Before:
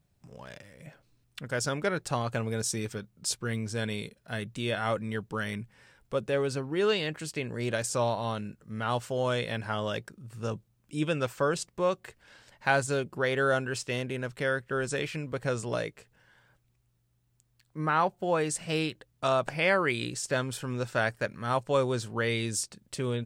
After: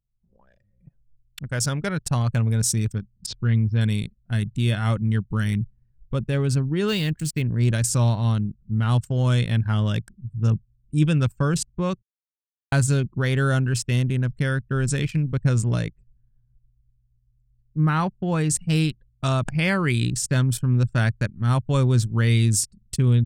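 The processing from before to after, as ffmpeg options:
ffmpeg -i in.wav -filter_complex "[0:a]asettb=1/sr,asplit=3[link_01][link_02][link_03];[link_01]atrim=end=3.264[link_04];[link_02]atrim=start=3.26:end=3.81,asetpts=PTS-STARTPTS,afade=type=in:duration=0.004:curve=qsin,afade=type=out:start_time=0.546:duration=0.004:curve=qsin,lowpass=frequency=4300:width=0.5412,lowpass=frequency=4300:width=1.3066[link_05];[link_03]atrim=start=3.806[link_06];[link_04][link_05]acrossfade=duration=0.004:curve1=hsin:curve2=qsin[link_07];[link_07][link_06]acrossfade=duration=0.004:curve1=qsin:curve2=hsin,asettb=1/sr,asplit=3[link_08][link_09][link_10];[link_08]atrim=end=6.884[link_11];[link_09]atrim=start=6.88:end=7.42,asetpts=PTS-STARTPTS,afade=type=in:duration=0.004:curve=qsin,afade=type=out:start_time=0.536:duration=0.004:curve=qsin,acrusher=bits=7:mix=0:aa=0.5[link_12];[link_10]atrim=start=7.416[link_13];[link_11][link_12]acrossfade=duration=0.004:curve1=hsin:curve2=qsin[link_14];[link_14][link_13]acrossfade=duration=0.004:curve1=qsin:curve2=hsin,asplit=3[link_15][link_16][link_17];[link_15]atrim=end=12.02,asetpts=PTS-STARTPTS,afade=type=out:start_time=12.016:duration=0.004:curve=hsin[link_18];[link_16]atrim=start=12.02:end=12.72,asetpts=PTS-STARTPTS,volume=0[link_19];[link_17]atrim=start=12.72,asetpts=PTS-STARTPTS,afade=type=in:duration=0.004:curve=hsin[link_20];[link_18][link_19][link_20]concat=n=3:v=0:a=1,highshelf=frequency=6000:gain=11.5,anlmdn=3.98,asubboost=boost=9.5:cutoff=170,volume=1.5dB" out.wav

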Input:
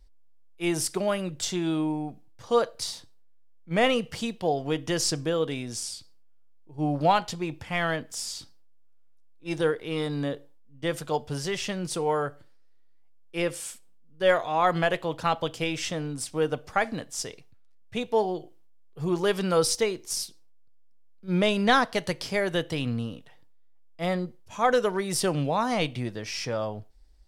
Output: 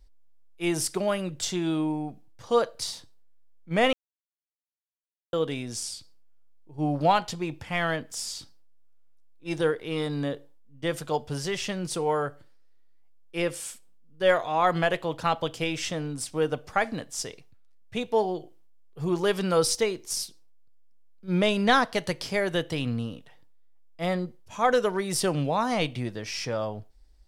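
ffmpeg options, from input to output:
ffmpeg -i in.wav -filter_complex "[0:a]asplit=3[link_01][link_02][link_03];[link_01]atrim=end=3.93,asetpts=PTS-STARTPTS,afade=type=out:start_time=3.926:duration=0.004:curve=hsin[link_04];[link_02]atrim=start=3.93:end=5.33,asetpts=PTS-STARTPTS,volume=0[link_05];[link_03]atrim=start=5.33,asetpts=PTS-STARTPTS,afade=type=in:duration=0.004:curve=hsin[link_06];[link_04][link_05][link_06]concat=n=3:v=0:a=1" out.wav

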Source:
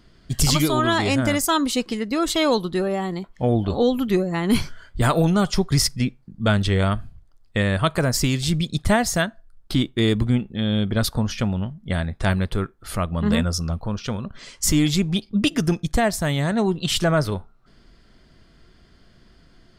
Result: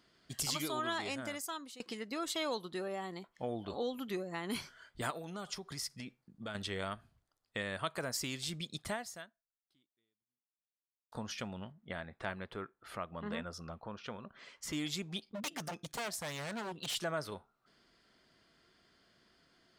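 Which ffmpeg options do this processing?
ffmpeg -i in.wav -filter_complex "[0:a]asettb=1/sr,asplit=3[link_01][link_02][link_03];[link_01]atrim=end=5.104[link_04];[link_02]atrim=start=5.1:end=6.55,asetpts=PTS-STARTPTS,afade=type=in:duration=0.004:curve=qsin,afade=type=out:start_time=1.446:duration=0.004:curve=qsin,acompressor=threshold=-23dB:ratio=6:attack=3.2:release=140:knee=1:detection=peak[link_05];[link_03]atrim=start=6.546[link_06];[link_04][link_05]acrossfade=duration=0.004:curve1=hsin:curve2=qsin[link_07];[link_07][link_06]acrossfade=duration=0.004:curve1=qsin:curve2=hsin,asettb=1/sr,asplit=3[link_08][link_09][link_10];[link_08]atrim=end=11.724[link_11];[link_09]atrim=start=11.72:end=14.73,asetpts=PTS-STARTPTS,afade=type=in:duration=0.004:curve=qsin,afade=type=out:start_time=3.006:duration=0.004:curve=qsin,bass=frequency=250:gain=-2,treble=frequency=4000:gain=-15[link_12];[link_10]atrim=start=14.726[link_13];[link_11][link_12]acrossfade=duration=0.004:curve1=hsin:curve2=qsin[link_14];[link_14][link_13]acrossfade=duration=0.004:curve1=qsin:curve2=hsin,asettb=1/sr,asplit=3[link_15][link_16][link_17];[link_15]atrim=end=15.274[link_18];[link_16]atrim=start=15.27:end=16.95,asetpts=PTS-STARTPTS,afade=type=in:duration=0.004:curve=qsin,afade=type=out:start_time=1.676:duration=0.004:curve=qsin,aeval=exprs='0.112*(abs(mod(val(0)/0.112+3,4)-2)-1)':channel_layout=same[link_19];[link_17]atrim=start=16.946[link_20];[link_18][link_19]acrossfade=duration=0.004:curve1=hsin:curve2=qsin[link_21];[link_21][link_20]acrossfade=duration=0.004:curve1=qsin:curve2=hsin,asplit=3[link_22][link_23][link_24];[link_22]atrim=end=1.8,asetpts=PTS-STARTPTS,afade=type=out:start_time=0.89:duration=0.91:silence=0.0841395[link_25];[link_23]atrim=start=1.8:end=11.12,asetpts=PTS-STARTPTS,afade=type=in:duration=0.004:curve=hsin:silence=0.0841395,afade=type=out:start_time=7.05:duration=2.27:curve=exp[link_26];[link_24]atrim=start=11.12,asetpts=PTS-STARTPTS,afade=type=in:duration=0.004:curve=hsin[link_27];[link_25][link_26][link_27]concat=n=3:v=0:a=1,highpass=frequency=510:poles=1,acompressor=threshold=-34dB:ratio=1.5,volume=-8.5dB" out.wav

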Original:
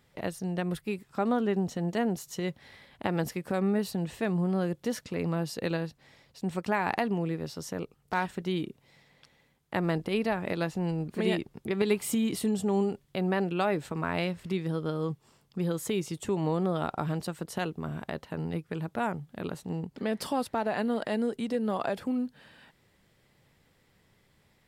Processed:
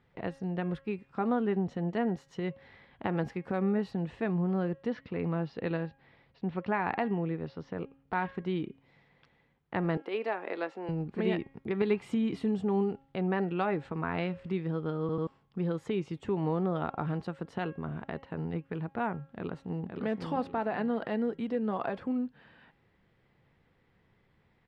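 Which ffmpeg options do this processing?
ffmpeg -i in.wav -filter_complex "[0:a]asettb=1/sr,asplit=3[link_01][link_02][link_03];[link_01]atrim=end=4.864[link_04];[link_02]atrim=start=4.86:end=8.35,asetpts=PTS-STARTPTS,afade=type=in:duration=0.004:curve=qsin,afade=type=out:start_time=3.486:duration=0.004:curve=qsin,lowpass=frequency=4700:width=0.5412,lowpass=frequency=4700:width=1.3066[link_05];[link_03]atrim=start=8.346[link_06];[link_04][link_05]acrossfade=duration=0.004:curve1=hsin:curve2=qsin[link_07];[link_07][link_06]acrossfade=duration=0.004:curve1=qsin:curve2=hsin,asettb=1/sr,asplit=3[link_08][link_09][link_10];[link_08]atrim=end=9.974[link_11];[link_09]atrim=start=9.97:end=10.89,asetpts=PTS-STARTPTS,afade=type=in:duration=0.004:curve=qsin,afade=type=out:start_time=0.916:duration=0.004:curve=qsin,highpass=frequency=330:width=0.5412,highpass=frequency=330:width=1.3066[link_12];[link_10]atrim=start=10.886[link_13];[link_11][link_12]acrossfade=duration=0.004:curve1=hsin:curve2=qsin[link_14];[link_14][link_13]acrossfade=duration=0.004:curve1=qsin:curve2=hsin,asplit=2[link_15][link_16];[link_16]afade=type=in:start_time=19.28:duration=0.01,afade=type=out:start_time=19.94:duration=0.01,aecho=0:1:520|1040|1560|2080:0.595662|0.208482|0.0729686|0.025539[link_17];[link_15][link_17]amix=inputs=2:normalize=0,asplit=4[link_18][link_19][link_20][link_21];[link_18]atrim=end=15.092[link_22];[link_19]atrim=start=14.998:end=15.092[link_23];[link_20]atrim=start=14.998:end=15.092[link_24];[link_21]atrim=start=15.268[link_25];[link_22][link_23]acrossfade=duration=0.004:curve1=hsin:curve2=hsin[link_26];[link_26][link_24]acrossfade=duration=0.004:curve1=hsin:curve2=hsin[link_27];[link_27][link_25]acrossfade=duration=0.004:curve1=hsin:curve2=hsin,lowpass=2400,bandreject=frequency=600:width=13,bandreject=frequency=272.2:width_type=h:width=4,bandreject=frequency=544.4:width_type=h:width=4,bandreject=frequency=816.6:width_type=h:width=4,bandreject=frequency=1088.8:width_type=h:width=4,bandreject=frequency=1361:width_type=h:width=4,bandreject=frequency=1633.2:width_type=h:width=4,bandreject=frequency=1905.4:width_type=h:width=4,bandreject=frequency=2177.6:width_type=h:width=4,bandreject=frequency=2449.8:width_type=h:width=4,bandreject=frequency=2722:width_type=h:width=4,bandreject=frequency=2994.2:width_type=h:width=4,bandreject=frequency=3266.4:width_type=h:width=4,volume=-1.5dB" out.wav

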